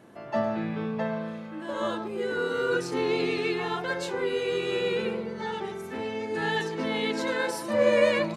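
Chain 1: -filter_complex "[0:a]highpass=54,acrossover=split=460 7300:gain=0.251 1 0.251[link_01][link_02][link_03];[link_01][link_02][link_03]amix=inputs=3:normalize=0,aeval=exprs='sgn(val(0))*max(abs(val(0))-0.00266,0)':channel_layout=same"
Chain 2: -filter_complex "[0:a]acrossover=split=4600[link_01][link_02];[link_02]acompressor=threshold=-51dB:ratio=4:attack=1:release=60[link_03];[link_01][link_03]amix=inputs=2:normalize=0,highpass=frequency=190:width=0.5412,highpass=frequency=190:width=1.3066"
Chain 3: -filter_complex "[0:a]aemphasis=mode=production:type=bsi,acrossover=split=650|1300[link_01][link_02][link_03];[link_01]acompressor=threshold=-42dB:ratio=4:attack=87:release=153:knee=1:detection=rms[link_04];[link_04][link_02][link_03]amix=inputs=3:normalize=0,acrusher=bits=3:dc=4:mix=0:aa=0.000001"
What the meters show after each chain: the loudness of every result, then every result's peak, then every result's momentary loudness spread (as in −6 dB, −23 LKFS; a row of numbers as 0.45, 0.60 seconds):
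−31.5, −28.5, −34.0 LKFS; −13.0, −9.5, −15.0 dBFS; 11, 9, 7 LU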